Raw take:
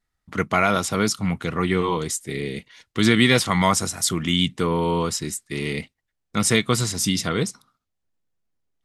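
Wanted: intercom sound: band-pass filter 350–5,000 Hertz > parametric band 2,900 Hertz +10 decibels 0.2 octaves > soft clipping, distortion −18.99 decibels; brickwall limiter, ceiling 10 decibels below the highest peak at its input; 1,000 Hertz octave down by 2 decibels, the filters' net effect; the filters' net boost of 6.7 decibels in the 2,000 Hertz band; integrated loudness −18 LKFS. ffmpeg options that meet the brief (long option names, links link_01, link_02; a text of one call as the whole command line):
ffmpeg -i in.wav -af "equalizer=frequency=1000:width_type=o:gain=-6,equalizer=frequency=2000:width_type=o:gain=8.5,alimiter=limit=-10dB:level=0:latency=1,highpass=350,lowpass=5000,equalizer=frequency=2900:width_type=o:width=0.2:gain=10,asoftclip=threshold=-12.5dB,volume=7.5dB" out.wav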